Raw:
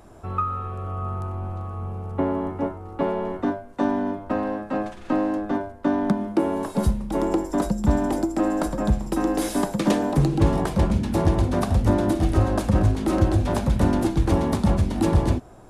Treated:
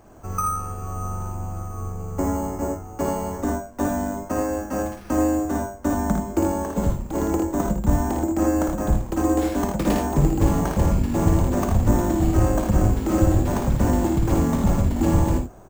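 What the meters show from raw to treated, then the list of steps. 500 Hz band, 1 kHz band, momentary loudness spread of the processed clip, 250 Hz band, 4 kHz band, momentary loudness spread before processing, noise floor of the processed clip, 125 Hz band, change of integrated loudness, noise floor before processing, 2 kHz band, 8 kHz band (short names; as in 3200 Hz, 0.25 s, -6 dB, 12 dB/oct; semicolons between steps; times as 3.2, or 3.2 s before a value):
0.0 dB, +0.5 dB, 9 LU, +0.5 dB, -3.0 dB, 9 LU, -39 dBFS, +1.0 dB, +0.5 dB, -42 dBFS, -0.5 dB, +5.5 dB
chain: octaver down 2 oct, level -5 dB; careless resampling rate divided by 6×, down filtered, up hold; early reflections 55 ms -4.5 dB, 80 ms -6.5 dB; gain -1.5 dB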